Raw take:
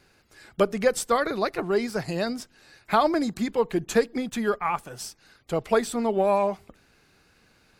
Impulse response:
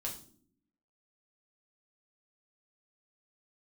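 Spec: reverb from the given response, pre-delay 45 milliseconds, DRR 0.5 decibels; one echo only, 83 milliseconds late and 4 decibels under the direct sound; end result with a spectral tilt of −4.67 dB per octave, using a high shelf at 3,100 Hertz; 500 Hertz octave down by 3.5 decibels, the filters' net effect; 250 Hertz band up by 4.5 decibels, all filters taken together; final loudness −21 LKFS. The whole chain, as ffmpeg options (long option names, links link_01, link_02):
-filter_complex "[0:a]equalizer=frequency=250:width_type=o:gain=7,equalizer=frequency=500:width_type=o:gain=-6.5,highshelf=frequency=3100:gain=4,aecho=1:1:83:0.631,asplit=2[link_01][link_02];[1:a]atrim=start_sample=2205,adelay=45[link_03];[link_02][link_03]afir=irnorm=-1:irlink=0,volume=-0.5dB[link_04];[link_01][link_04]amix=inputs=2:normalize=0,volume=0.5dB"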